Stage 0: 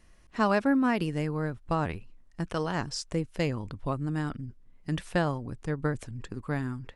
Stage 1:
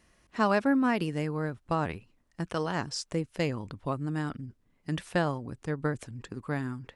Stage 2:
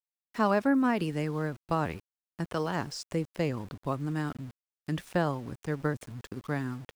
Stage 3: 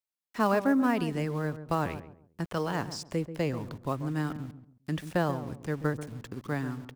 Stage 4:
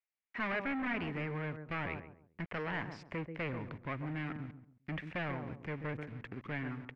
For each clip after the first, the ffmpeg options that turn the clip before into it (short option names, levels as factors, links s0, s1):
-af "highpass=f=110:p=1"
-filter_complex "[0:a]acrossover=split=500|1400[s0][s1][s2];[s2]alimiter=level_in=2.11:limit=0.0631:level=0:latency=1:release=29,volume=0.473[s3];[s0][s1][s3]amix=inputs=3:normalize=0,aeval=exprs='val(0)*gte(abs(val(0)),0.00447)':c=same"
-filter_complex "[0:a]acrossover=split=720|2500[s0][s1][s2];[s1]acrusher=bits=4:mode=log:mix=0:aa=0.000001[s3];[s0][s3][s2]amix=inputs=3:normalize=0,asplit=2[s4][s5];[s5]adelay=136,lowpass=f=890:p=1,volume=0.299,asplit=2[s6][s7];[s7]adelay=136,lowpass=f=890:p=1,volume=0.32,asplit=2[s8][s9];[s9]adelay=136,lowpass=f=890:p=1,volume=0.32[s10];[s4][s6][s8][s10]amix=inputs=4:normalize=0"
-af "asoftclip=type=hard:threshold=0.0299,lowpass=f=2200:t=q:w=3.4,volume=0.562"